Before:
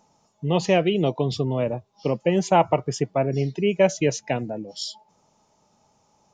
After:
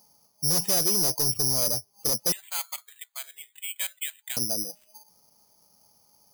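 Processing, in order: 2.32–4.37 s: high-pass 1.4 kHz 24 dB/octave; hard clipper -23 dBFS, distortion -6 dB; careless resampling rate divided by 8×, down filtered, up zero stuff; trim -6.5 dB

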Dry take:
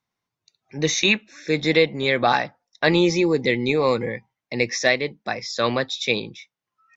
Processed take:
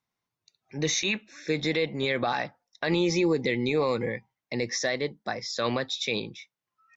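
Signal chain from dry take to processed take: 4.57–5.53 s: peaking EQ 2.5 kHz -10.5 dB 0.3 oct; peak limiter -13 dBFS, peak gain reduction 8.5 dB; trim -3 dB

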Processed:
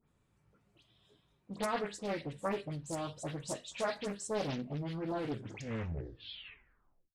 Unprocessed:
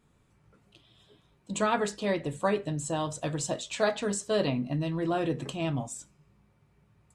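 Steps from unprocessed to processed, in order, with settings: tape stop on the ending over 2.05 s; phase dispersion highs, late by 78 ms, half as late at 2.5 kHz; loudspeaker Doppler distortion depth 0.67 ms; trim -8 dB

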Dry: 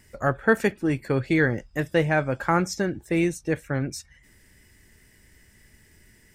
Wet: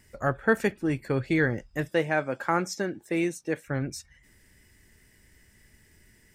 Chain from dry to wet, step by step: 1.89–3.68 s: high-pass 210 Hz 12 dB/octave; trim -3 dB

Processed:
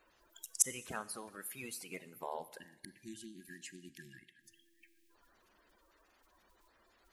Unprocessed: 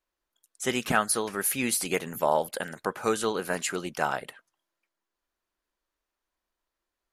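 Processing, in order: coarse spectral quantiser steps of 30 dB; inverted gate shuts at -29 dBFS, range -34 dB; spectral selection erased 2.60–5.10 s, 380–1600 Hz; Schroeder reverb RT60 1.1 s, combs from 30 ms, DRR 16 dB; trim +16.5 dB

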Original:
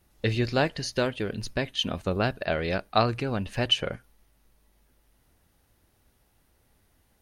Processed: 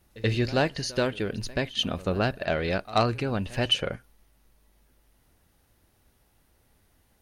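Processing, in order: saturation -12.5 dBFS, distortion -21 dB; on a send: reverse echo 81 ms -19.5 dB; on the sum: trim +1 dB

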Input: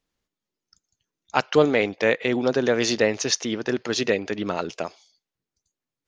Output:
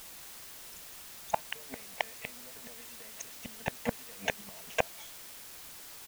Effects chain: comb 4.5 ms, depth 75%; compression 6:1, threshold -23 dBFS, peak gain reduction 14 dB; inverted gate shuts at -19 dBFS, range -37 dB; static phaser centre 1.3 kHz, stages 6; word length cut 10-bit, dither triangular; trim +12 dB

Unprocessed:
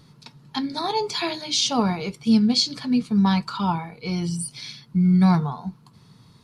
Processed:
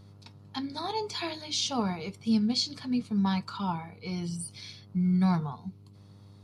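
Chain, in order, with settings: mains buzz 100 Hz, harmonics 14, -45 dBFS -9 dB/octave; time-frequency box 5.55–5.95 s, 490–1900 Hz -8 dB; trim -8 dB

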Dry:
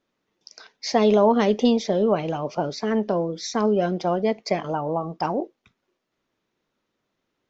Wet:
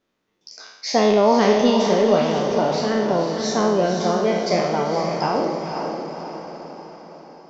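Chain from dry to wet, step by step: spectral sustain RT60 0.94 s; on a send: echo that smears into a reverb 511 ms, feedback 52%, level -5.5 dB

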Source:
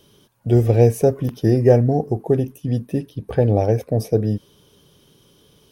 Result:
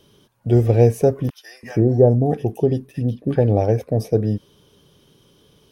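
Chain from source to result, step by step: treble shelf 6.5 kHz -5.5 dB; 1.30–3.36 s: bands offset in time highs, lows 330 ms, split 1.1 kHz

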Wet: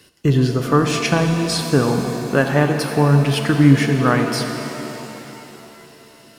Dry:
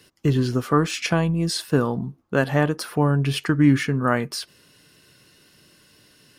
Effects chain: pitch-shifted reverb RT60 3.4 s, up +7 st, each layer -8 dB, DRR 5 dB; trim +3.5 dB

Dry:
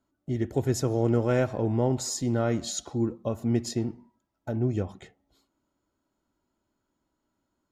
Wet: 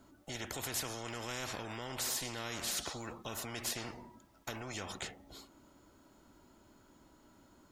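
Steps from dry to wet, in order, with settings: peak limiter -21.5 dBFS, peak gain reduction 8.5 dB; spectrum-flattening compressor 4:1; trim -1.5 dB

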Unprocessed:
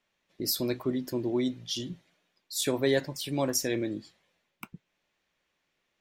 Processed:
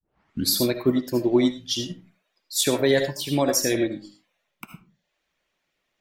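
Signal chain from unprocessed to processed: tape start-up on the opening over 0.55 s; reverb removal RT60 0.57 s; on a send at -5.5 dB: reverberation RT60 0.35 s, pre-delay 35 ms; on the sum: loudness maximiser +18 dB; upward expansion 1.5:1, over -23 dBFS; trim -7.5 dB

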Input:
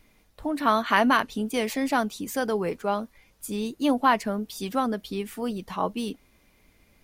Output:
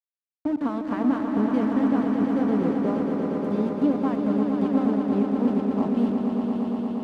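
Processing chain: compression 4:1, threshold -24 dBFS, peak gain reduction 8.5 dB; small samples zeroed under -28 dBFS; band-pass filter 230 Hz, Q 1.2; echo with a slow build-up 117 ms, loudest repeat 5, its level -7 dB; trim +8 dB

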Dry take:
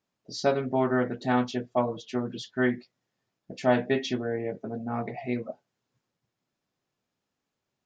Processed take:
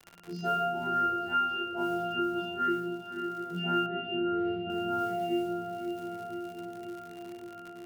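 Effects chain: partials quantised in pitch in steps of 2 st; 1.04–1.70 s: steep high-pass 250 Hz 48 dB/octave; pitch-class resonator F, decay 0.42 s; short-mantissa float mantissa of 4-bit; echo that smears into a reverb 590 ms, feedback 49%, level -13 dB; simulated room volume 80 m³, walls mixed, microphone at 3.1 m; crackle 130 per s -51 dBFS; 3.86–4.70 s: distance through air 380 m; three bands compressed up and down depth 70%

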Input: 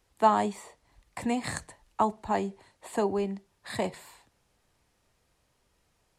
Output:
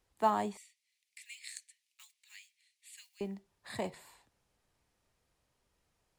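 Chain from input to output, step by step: block-companded coder 7-bit; 0.57–3.21 s: elliptic high-pass 2.2 kHz, stop band 80 dB; trim -7 dB

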